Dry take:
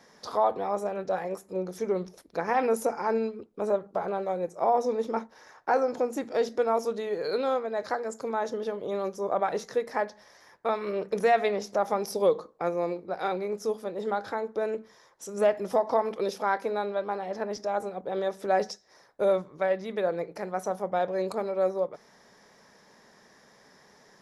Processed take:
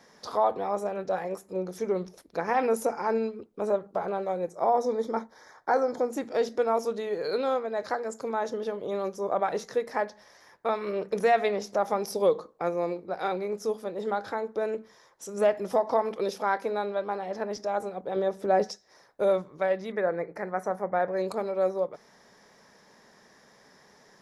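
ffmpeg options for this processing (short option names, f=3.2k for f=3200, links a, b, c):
-filter_complex "[0:a]asettb=1/sr,asplit=3[a][b][c];[a]atrim=end=4.524[d];[b]atrim=start=4.52:end=6.11,asetpts=PTS-STARTPTS,afade=t=in:d=0.004:c=qsin,afade=t=out:st=1.586:d=0.004:c=qsin,asuperstop=centerf=2700:order=4:qfactor=3.3[e];[c]atrim=start=6.106[f];[d][e]acrossfade=d=0.004:c1=hsin:c2=qsin[g];[g][f]acrossfade=d=0.004:c1=qsin:c2=hsin,asettb=1/sr,asplit=3[h][i][j];[h]atrim=end=18.164[k];[i]atrim=start=18.16:end=18.64,asetpts=PTS-STARTPTS,afade=t=in:d=0.004:c=qsin,afade=t=out:st=0.476:d=0.004:c=qsin,tiltshelf=f=900:g=4.5[l];[j]atrim=start=18.636[m];[k][l]acrossfade=d=0.004:c1=hsin:c2=qsin[n];[n][m]acrossfade=d=0.004:c1=qsin:c2=hsin,asettb=1/sr,asplit=3[o][p][q];[o]atrim=end=19.924[r];[p]atrim=start=19.92:end=21.17,asetpts=PTS-STARTPTS,afade=t=in:d=0.004:c=qsin,afade=t=out:st=1.246:d=0.004:c=qsin,highshelf=f=2.4k:t=q:w=3:g=-7[s];[q]atrim=start=21.166[t];[r][s]acrossfade=d=0.004:c1=hsin:c2=qsin[u];[u][t]acrossfade=d=0.004:c1=qsin:c2=hsin"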